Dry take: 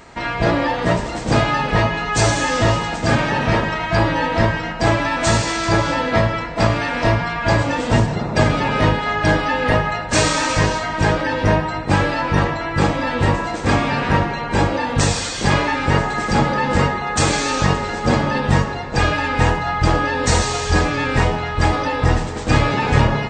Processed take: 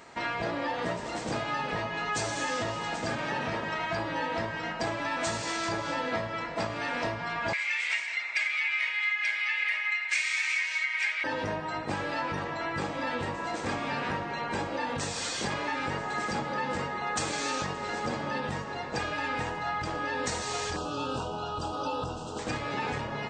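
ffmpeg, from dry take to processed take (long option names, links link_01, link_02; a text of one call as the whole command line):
ffmpeg -i in.wav -filter_complex "[0:a]asettb=1/sr,asplit=3[link_01][link_02][link_03];[link_01]atrim=end=7.534[link_04];[link_02]atrim=start=7.53:end=11.24,asetpts=PTS-STARTPTS,afade=type=in:duration=0.004:curve=qsin,afade=type=out:start_time=3.706:duration=0.004:curve=qsin,highpass=frequency=2200:width_type=q:width=11[link_05];[link_03]atrim=start=11.236[link_06];[link_04][link_05]acrossfade=duration=0.004:curve1=hsin:curve2=qsin[link_07];[link_07][link_06]acrossfade=duration=0.004:curve1=qsin:curve2=hsin,asettb=1/sr,asplit=3[link_08][link_09][link_10];[link_08]atrim=end=20.764[link_11];[link_09]atrim=start=20.76:end=22.39,asetpts=PTS-STARTPTS,afade=type=in:duration=0.004:curve=qsin,afade=type=out:start_time=1.626:duration=0.004:curve=qsin,asuperstop=centerf=2000:order=12:qfactor=1.8[link_12];[link_10]atrim=start=22.386[link_13];[link_11][link_12]acrossfade=duration=0.004:curve1=hsin:curve2=qsin[link_14];[link_14][link_13]acrossfade=duration=0.004:curve1=qsin:curve2=hsin,acompressor=threshold=-20dB:ratio=6,highpass=frequency=250:poles=1,volume=-6.5dB" out.wav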